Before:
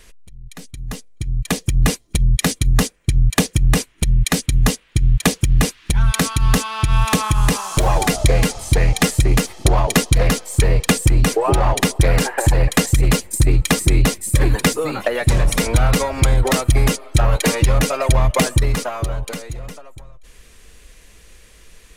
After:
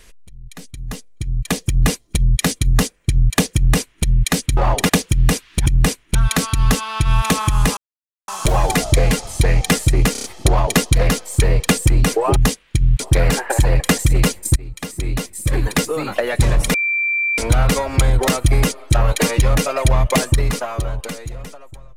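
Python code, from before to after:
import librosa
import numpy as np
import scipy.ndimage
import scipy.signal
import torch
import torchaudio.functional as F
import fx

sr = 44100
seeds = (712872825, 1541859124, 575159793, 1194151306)

y = fx.edit(x, sr, fx.duplicate(start_s=3.55, length_s=0.49, to_s=5.98),
    fx.swap(start_s=4.57, length_s=0.64, other_s=11.56, other_length_s=0.32),
    fx.insert_silence(at_s=7.6, length_s=0.51),
    fx.stutter(start_s=9.44, slice_s=0.03, count=5),
    fx.fade_in_from(start_s=13.44, length_s=1.48, floor_db=-23.0),
    fx.insert_tone(at_s=15.62, length_s=0.64, hz=2350.0, db=-16.0), tone=tone)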